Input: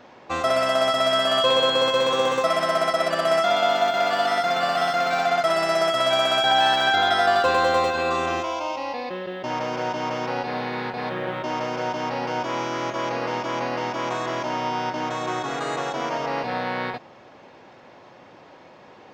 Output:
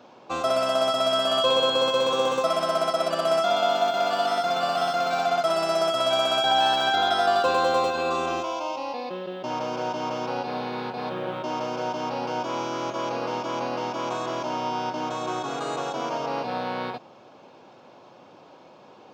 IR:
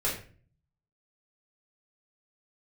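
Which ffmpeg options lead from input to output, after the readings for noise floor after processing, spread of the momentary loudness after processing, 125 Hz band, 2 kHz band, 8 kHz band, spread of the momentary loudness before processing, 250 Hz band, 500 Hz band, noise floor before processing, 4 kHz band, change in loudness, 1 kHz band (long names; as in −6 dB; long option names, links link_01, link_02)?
−50 dBFS, 10 LU, −3.5 dB, −6.5 dB, −1.5 dB, 10 LU, −1.5 dB, −1.5 dB, −48 dBFS, −2.0 dB, −2.5 dB, −2.0 dB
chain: -af "highpass=120,equalizer=frequency=1900:width_type=o:width=0.38:gain=-12.5,volume=-1.5dB"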